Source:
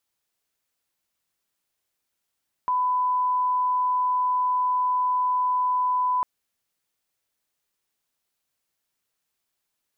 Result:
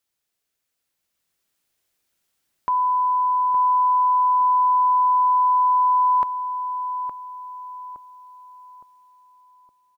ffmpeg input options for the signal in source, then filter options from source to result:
-f lavfi -i "sine=f=1000:d=3.55:r=44100,volume=-1.94dB"
-filter_complex "[0:a]equalizer=f=960:t=o:w=0.77:g=-3,dynaudnorm=f=360:g=7:m=6dB,asplit=2[a][b];[b]adelay=865,lowpass=f=1.1k:p=1,volume=-7dB,asplit=2[c][d];[d]adelay=865,lowpass=f=1.1k:p=1,volume=0.48,asplit=2[e][f];[f]adelay=865,lowpass=f=1.1k:p=1,volume=0.48,asplit=2[g][h];[h]adelay=865,lowpass=f=1.1k:p=1,volume=0.48,asplit=2[i][j];[j]adelay=865,lowpass=f=1.1k:p=1,volume=0.48,asplit=2[k][l];[l]adelay=865,lowpass=f=1.1k:p=1,volume=0.48[m];[a][c][e][g][i][k][m]amix=inputs=7:normalize=0"

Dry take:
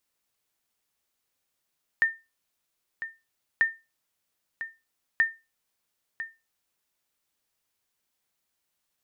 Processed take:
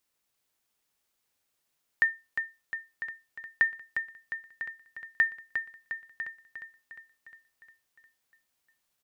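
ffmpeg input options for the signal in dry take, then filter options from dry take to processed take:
-f lavfi -i "aevalsrc='0.2*(sin(2*PI*1810*mod(t,1.59))*exp(-6.91*mod(t,1.59)/0.25)+0.237*sin(2*PI*1810*max(mod(t,1.59)-1,0))*exp(-6.91*max(mod(t,1.59)-1,0)/0.25))':d=4.77:s=44100"
-af "aecho=1:1:355|710|1065|1420|1775|2130|2485|2840:0.422|0.253|0.152|0.0911|0.0547|0.0328|0.0197|0.0118"

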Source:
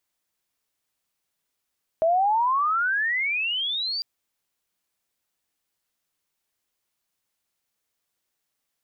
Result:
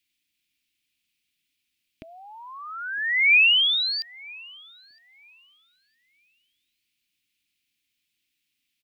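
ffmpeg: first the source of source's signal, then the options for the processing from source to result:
-f lavfi -i "aevalsrc='pow(10,(-17-8.5*t/2)/20)*sin(2*PI*634*2/(35*log(2)/12)*(exp(35*log(2)/12*t/2)-1))':d=2:s=44100"
-filter_complex "[0:a]acrossover=split=3000[a][b];[b]acompressor=threshold=-33dB:ratio=4:attack=1:release=60[c];[a][c]amix=inputs=2:normalize=0,firequalizer=gain_entry='entry(170,0);entry(290,4);entry(580,-28);entry(2400,11);entry(6200,-1)':delay=0.05:min_phase=1,asplit=2[d][e];[e]adelay=962,lowpass=f=1.7k:p=1,volume=-19.5dB,asplit=2[f][g];[g]adelay=962,lowpass=f=1.7k:p=1,volume=0.38,asplit=2[h][i];[i]adelay=962,lowpass=f=1.7k:p=1,volume=0.38[j];[d][f][h][j]amix=inputs=4:normalize=0"

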